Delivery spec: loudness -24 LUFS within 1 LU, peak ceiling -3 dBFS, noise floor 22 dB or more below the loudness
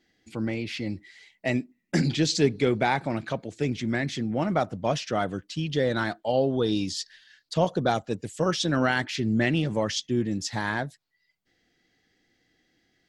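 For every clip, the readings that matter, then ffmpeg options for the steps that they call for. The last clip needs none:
loudness -27.0 LUFS; peak -9.5 dBFS; loudness target -24.0 LUFS
-> -af "volume=3dB"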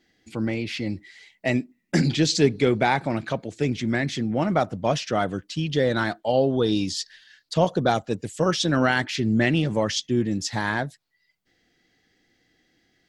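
loudness -24.0 LUFS; peak -6.5 dBFS; noise floor -70 dBFS

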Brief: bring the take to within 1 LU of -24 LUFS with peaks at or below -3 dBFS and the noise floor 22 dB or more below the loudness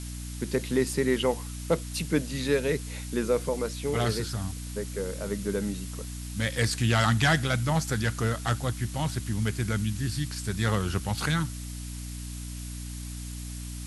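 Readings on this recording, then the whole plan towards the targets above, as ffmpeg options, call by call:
hum 60 Hz; harmonics up to 300 Hz; hum level -35 dBFS; noise floor -37 dBFS; noise floor target -51 dBFS; loudness -29.0 LUFS; peak -11.0 dBFS; loudness target -24.0 LUFS
-> -af "bandreject=f=60:t=h:w=4,bandreject=f=120:t=h:w=4,bandreject=f=180:t=h:w=4,bandreject=f=240:t=h:w=4,bandreject=f=300:t=h:w=4"
-af "afftdn=nr=14:nf=-37"
-af "volume=5dB"

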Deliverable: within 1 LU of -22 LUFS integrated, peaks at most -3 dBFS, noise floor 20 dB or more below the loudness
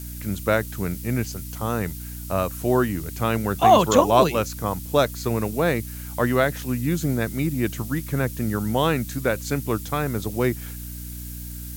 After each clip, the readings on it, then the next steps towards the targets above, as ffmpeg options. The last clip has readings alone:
hum 60 Hz; harmonics up to 300 Hz; hum level -33 dBFS; noise floor -35 dBFS; noise floor target -44 dBFS; loudness -23.5 LUFS; peak -2.0 dBFS; loudness target -22.0 LUFS
-> -af "bandreject=f=60:t=h:w=4,bandreject=f=120:t=h:w=4,bandreject=f=180:t=h:w=4,bandreject=f=240:t=h:w=4,bandreject=f=300:t=h:w=4"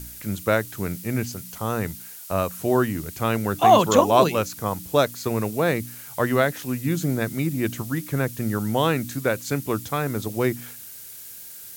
hum none; noise floor -41 dBFS; noise floor target -44 dBFS
-> -af "afftdn=nr=6:nf=-41"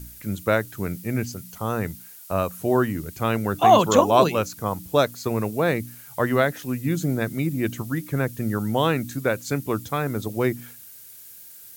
noise floor -45 dBFS; loudness -23.5 LUFS; peak -2.0 dBFS; loudness target -22.0 LUFS
-> -af "volume=1.5dB,alimiter=limit=-3dB:level=0:latency=1"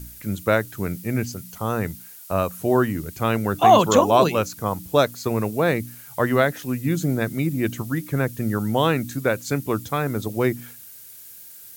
loudness -22.5 LUFS; peak -3.0 dBFS; noise floor -43 dBFS

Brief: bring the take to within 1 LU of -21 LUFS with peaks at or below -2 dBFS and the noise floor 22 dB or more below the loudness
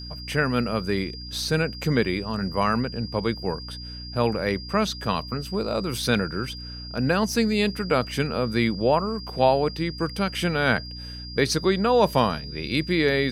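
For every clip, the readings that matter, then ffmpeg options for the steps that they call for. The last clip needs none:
hum 60 Hz; harmonics up to 300 Hz; hum level -36 dBFS; steady tone 4800 Hz; tone level -38 dBFS; loudness -24.5 LUFS; peak -5.0 dBFS; loudness target -21.0 LUFS
-> -af "bandreject=f=60:t=h:w=6,bandreject=f=120:t=h:w=6,bandreject=f=180:t=h:w=6,bandreject=f=240:t=h:w=6,bandreject=f=300:t=h:w=6"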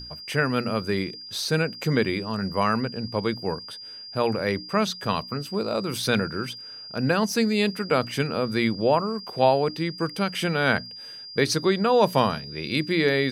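hum none; steady tone 4800 Hz; tone level -38 dBFS
-> -af "bandreject=f=4.8k:w=30"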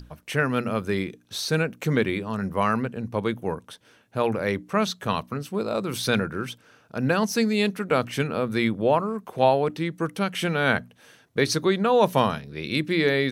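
steady tone none; loudness -25.0 LUFS; peak -5.0 dBFS; loudness target -21.0 LUFS
-> -af "volume=4dB,alimiter=limit=-2dB:level=0:latency=1"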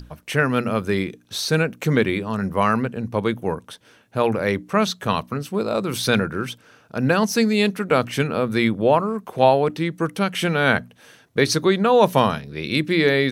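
loudness -21.0 LUFS; peak -2.0 dBFS; noise floor -54 dBFS

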